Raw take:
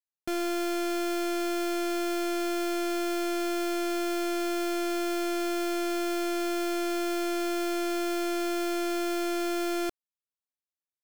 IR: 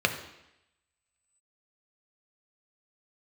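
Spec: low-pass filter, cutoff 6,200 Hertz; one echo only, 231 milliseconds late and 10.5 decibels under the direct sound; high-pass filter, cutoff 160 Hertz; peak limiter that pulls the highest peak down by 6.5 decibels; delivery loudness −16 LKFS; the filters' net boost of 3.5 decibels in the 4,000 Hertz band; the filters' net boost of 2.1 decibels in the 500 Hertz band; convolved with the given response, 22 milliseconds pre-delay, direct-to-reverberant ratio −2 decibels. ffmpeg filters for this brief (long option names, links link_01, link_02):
-filter_complex "[0:a]highpass=160,lowpass=6200,equalizer=frequency=500:width_type=o:gain=4.5,equalizer=frequency=4000:width_type=o:gain=5,alimiter=level_in=2.5dB:limit=-24dB:level=0:latency=1,volume=-2.5dB,aecho=1:1:231:0.299,asplit=2[link_01][link_02];[1:a]atrim=start_sample=2205,adelay=22[link_03];[link_02][link_03]afir=irnorm=-1:irlink=0,volume=-11dB[link_04];[link_01][link_04]amix=inputs=2:normalize=0,volume=16dB"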